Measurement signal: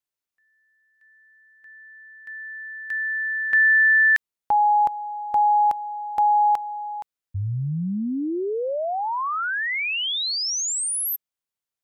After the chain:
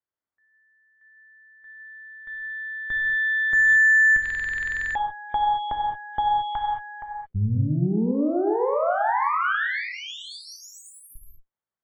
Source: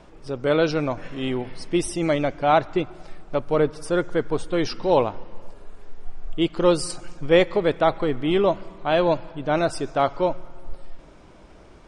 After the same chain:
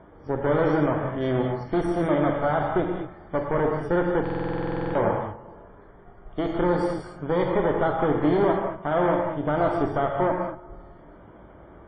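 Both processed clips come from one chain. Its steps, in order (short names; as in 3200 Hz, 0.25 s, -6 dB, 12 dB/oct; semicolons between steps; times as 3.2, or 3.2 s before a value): HPF 50 Hz 12 dB/oct; limiter -16 dBFS; added harmonics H 4 -11 dB, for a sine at -16 dBFS; polynomial smoothing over 41 samples; non-linear reverb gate 0.25 s flat, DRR 0.5 dB; stuck buffer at 4.21, samples 2048, times 15; WMA 32 kbps 44100 Hz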